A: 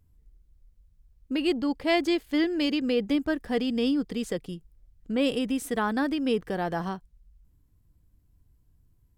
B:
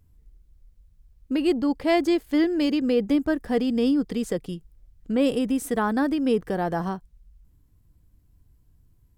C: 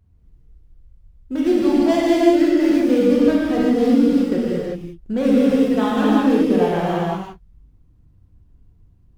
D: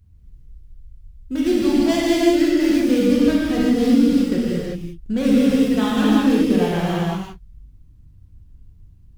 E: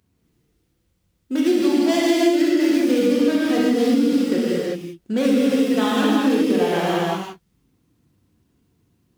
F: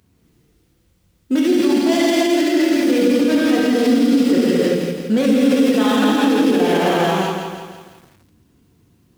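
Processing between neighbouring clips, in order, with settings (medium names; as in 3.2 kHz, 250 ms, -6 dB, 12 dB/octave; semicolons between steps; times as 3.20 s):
dynamic bell 3.1 kHz, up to -7 dB, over -46 dBFS, Q 0.73; trim +4 dB
median filter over 25 samples; gated-style reverb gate 410 ms flat, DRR -7.5 dB
peaking EQ 650 Hz -11 dB 3 oct; trim +6.5 dB
Chebyshev high-pass 330 Hz, order 2; compression 3:1, threshold -20 dBFS, peak gain reduction 7.5 dB; trim +5 dB
peak limiter -17 dBFS, peak gain reduction 10.5 dB; bit-crushed delay 167 ms, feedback 55%, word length 9-bit, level -6 dB; trim +8 dB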